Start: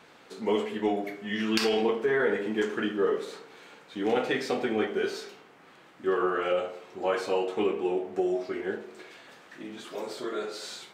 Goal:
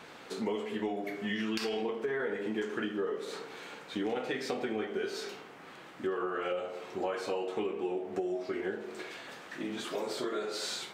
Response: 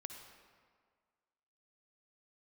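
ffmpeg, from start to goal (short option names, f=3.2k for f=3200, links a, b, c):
-af "acompressor=threshold=-36dB:ratio=6,volume=4.5dB"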